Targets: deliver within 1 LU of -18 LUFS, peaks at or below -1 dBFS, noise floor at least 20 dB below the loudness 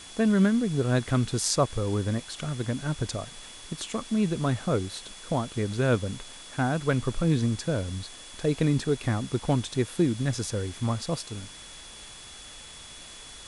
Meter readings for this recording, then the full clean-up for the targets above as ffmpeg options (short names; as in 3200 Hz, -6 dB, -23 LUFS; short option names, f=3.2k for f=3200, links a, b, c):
steady tone 3400 Hz; tone level -48 dBFS; noise floor -45 dBFS; noise floor target -48 dBFS; loudness -28.0 LUFS; peak -8.5 dBFS; loudness target -18.0 LUFS
-> -af "bandreject=f=3.4k:w=30"
-af "afftdn=nr=6:nf=-45"
-af "volume=10dB,alimiter=limit=-1dB:level=0:latency=1"